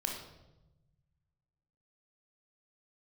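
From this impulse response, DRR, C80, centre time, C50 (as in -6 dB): 0.0 dB, 6.5 dB, 40 ms, 3.5 dB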